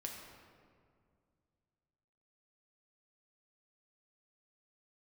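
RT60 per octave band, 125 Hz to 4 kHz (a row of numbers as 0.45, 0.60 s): 3.1, 2.7, 2.3, 2.0, 1.6, 1.2 s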